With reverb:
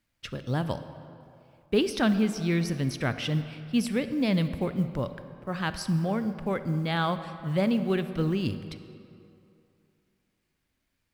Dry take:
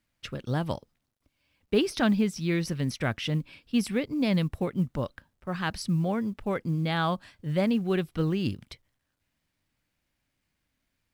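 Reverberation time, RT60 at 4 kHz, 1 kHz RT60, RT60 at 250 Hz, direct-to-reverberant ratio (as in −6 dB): 2.7 s, 1.6 s, 2.8 s, 2.5 s, 10.5 dB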